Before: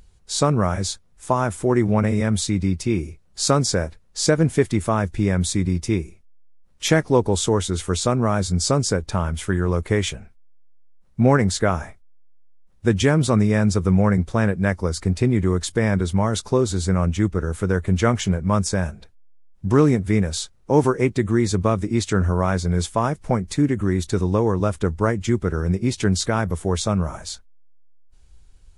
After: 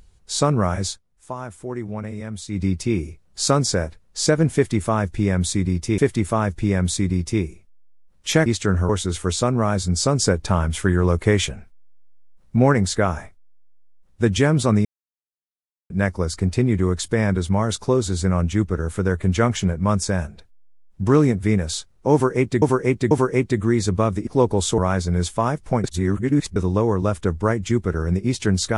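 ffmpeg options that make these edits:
ffmpeg -i in.wav -filter_complex "[0:a]asplit=16[link_01][link_02][link_03][link_04][link_05][link_06][link_07][link_08][link_09][link_10][link_11][link_12][link_13][link_14][link_15][link_16];[link_01]atrim=end=1.02,asetpts=PTS-STARTPTS,afade=type=out:start_time=0.87:duration=0.15:silence=0.281838[link_17];[link_02]atrim=start=1.02:end=2.48,asetpts=PTS-STARTPTS,volume=-11dB[link_18];[link_03]atrim=start=2.48:end=5.982,asetpts=PTS-STARTPTS,afade=type=in:duration=0.15:silence=0.281838[link_19];[link_04]atrim=start=4.538:end=7.022[link_20];[link_05]atrim=start=21.928:end=22.362[link_21];[link_06]atrim=start=7.528:end=8.832[link_22];[link_07]atrim=start=8.828:end=11.202,asetpts=PTS-STARTPTS,volume=3dB[link_23];[link_08]atrim=start=11.198:end=13.49,asetpts=PTS-STARTPTS,afade=type=out:start_time=2.288:duration=0.004:curve=hsin[link_24];[link_09]atrim=start=13.49:end=14.54,asetpts=PTS-STARTPTS,volume=0[link_25];[link_10]atrim=start=14.54:end=21.262,asetpts=PTS-STARTPTS,afade=type=in:duration=0.004:curve=hsin[link_26];[link_11]atrim=start=20.768:end=21.262[link_27];[link_12]atrim=start=20.768:end=21.932[link_28];[link_13]atrim=start=7.018:end=7.532[link_29];[link_14]atrim=start=22.358:end=23.422[link_30];[link_15]atrim=start=23.418:end=24.142,asetpts=PTS-STARTPTS,areverse[link_31];[link_16]atrim=start=24.138[link_32];[link_17][link_18][link_19]concat=n=3:v=0:a=1[link_33];[link_33][link_20]acrossfade=duration=0.004:curve1=hsin:curve2=hsin[link_34];[link_34][link_21]acrossfade=duration=0.004:curve1=hsin:curve2=hsin[link_35];[link_35][link_22]acrossfade=duration=0.004:curve1=hsin:curve2=hsin[link_36];[link_36][link_23]acrossfade=duration=0.004:curve1=hsin:curve2=hsin[link_37];[link_24][link_25][link_26]concat=n=3:v=0:a=1[link_38];[link_37][link_38]acrossfade=duration=0.004:curve1=hsin:curve2=hsin[link_39];[link_39][link_27]acrossfade=duration=0.004:curve1=hsin:curve2=hsin[link_40];[link_40][link_28]acrossfade=duration=0.004:curve1=hsin:curve2=hsin[link_41];[link_41][link_29]acrossfade=duration=0.004:curve1=hsin:curve2=hsin[link_42];[link_42][link_30]acrossfade=duration=0.004:curve1=hsin:curve2=hsin[link_43];[link_43][link_31]acrossfade=duration=0.004:curve1=hsin:curve2=hsin[link_44];[link_44][link_32]acrossfade=duration=0.004:curve1=hsin:curve2=hsin" out.wav

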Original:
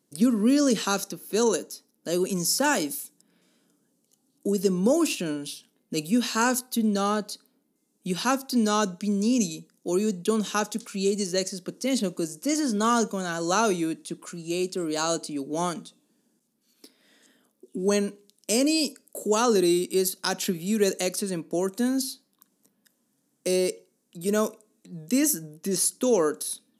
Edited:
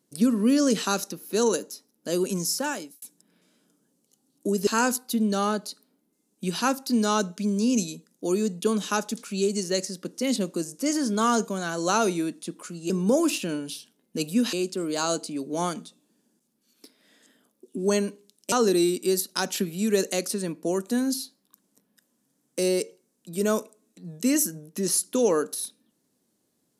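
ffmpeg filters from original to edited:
ffmpeg -i in.wav -filter_complex "[0:a]asplit=6[link_01][link_02][link_03][link_04][link_05][link_06];[link_01]atrim=end=3.02,asetpts=PTS-STARTPTS,afade=type=out:start_time=2.33:duration=0.69[link_07];[link_02]atrim=start=3.02:end=4.672,asetpts=PTS-STARTPTS,afade=type=in:duration=0.004:curve=hsin[link_08];[link_03]atrim=start=6.298:end=14.532[link_09];[link_04]atrim=start=4.668:end=6.302[link_10];[link_05]atrim=start=14.528:end=18.522[link_11];[link_06]atrim=start=19.398[link_12];[link_07][link_08]concat=n=2:v=0:a=1[link_13];[link_13][link_09]acrossfade=duration=0.004:curve1=hsin:curve2=hsin[link_14];[link_14][link_10]acrossfade=duration=0.004:curve1=hsin:curve2=hsin[link_15];[link_15][link_11]acrossfade=duration=0.004:curve1=hsin:curve2=hsin[link_16];[link_16][link_12]acrossfade=duration=0.004:curve1=hsin:curve2=hsin" out.wav

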